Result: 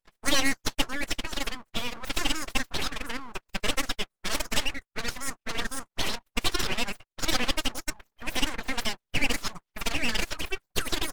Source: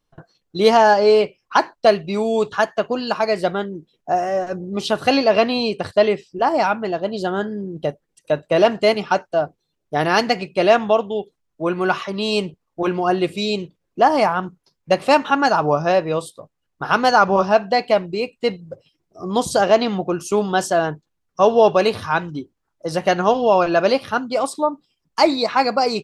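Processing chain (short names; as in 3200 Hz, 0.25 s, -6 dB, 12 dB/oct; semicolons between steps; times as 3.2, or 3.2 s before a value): formant-preserving pitch shift -10.5 st; low shelf 190 Hz -7 dB; full-wave rectifier; speed mistake 33 rpm record played at 78 rpm; gain -6.5 dB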